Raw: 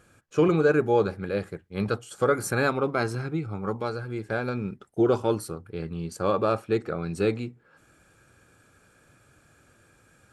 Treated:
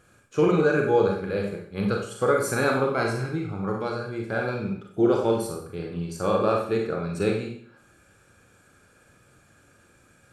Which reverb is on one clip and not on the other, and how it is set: Schroeder reverb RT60 0.56 s, combs from 31 ms, DRR 0.5 dB; trim -1 dB

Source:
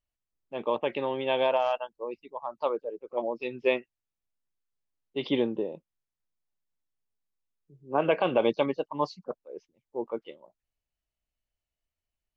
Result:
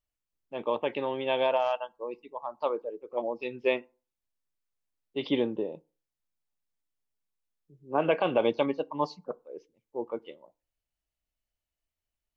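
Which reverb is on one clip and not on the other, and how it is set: FDN reverb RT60 0.36 s, low-frequency decay 1×, high-frequency decay 0.6×, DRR 18.5 dB; trim -1 dB

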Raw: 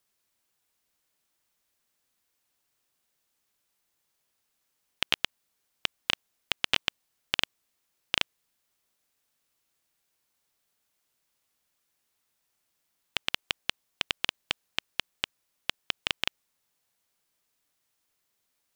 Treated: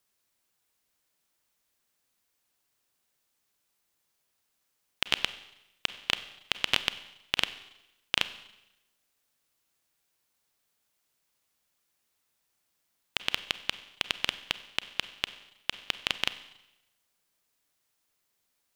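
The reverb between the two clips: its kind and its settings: Schroeder reverb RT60 0.93 s, combs from 31 ms, DRR 13 dB

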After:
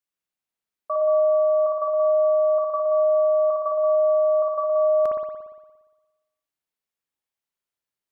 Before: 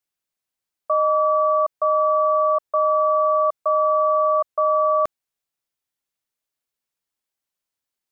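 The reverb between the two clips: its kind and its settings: spring tank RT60 1.2 s, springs 58 ms, chirp 35 ms, DRR -1 dB; trim -6 dB

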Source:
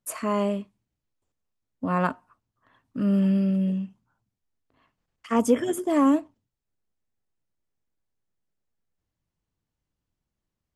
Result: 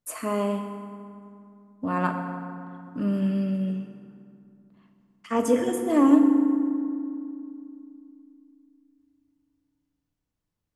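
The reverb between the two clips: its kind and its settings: FDN reverb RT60 2.5 s, low-frequency decay 1.45×, high-frequency decay 0.55×, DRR 4 dB; trim -2 dB

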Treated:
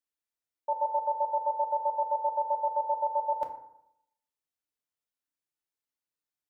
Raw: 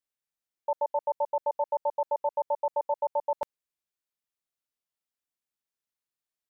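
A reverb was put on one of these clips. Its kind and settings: FDN reverb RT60 0.78 s, low-frequency decay 1.05×, high-frequency decay 0.45×, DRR 2.5 dB; trim -4.5 dB

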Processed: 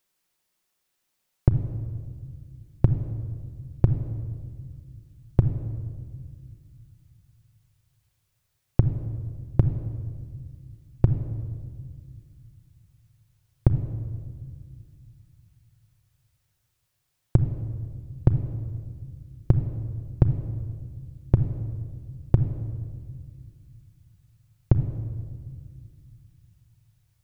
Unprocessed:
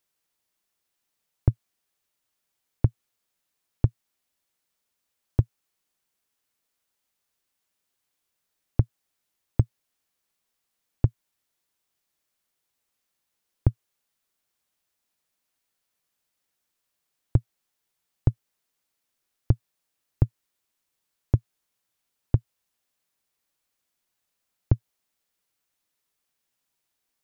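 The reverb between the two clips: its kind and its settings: simulated room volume 3100 m³, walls mixed, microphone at 0.99 m; trim +3 dB

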